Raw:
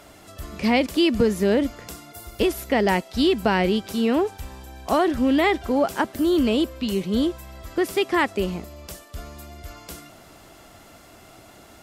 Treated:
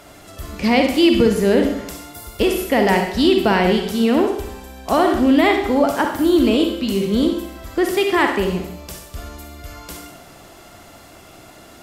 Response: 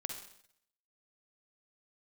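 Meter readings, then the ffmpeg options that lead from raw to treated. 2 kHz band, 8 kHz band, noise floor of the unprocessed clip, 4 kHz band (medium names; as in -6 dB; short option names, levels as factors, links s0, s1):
+5.0 dB, +5.0 dB, -49 dBFS, +5.0 dB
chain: -filter_complex "[1:a]atrim=start_sample=2205[s0];[0:a][s0]afir=irnorm=-1:irlink=0,volume=1.88"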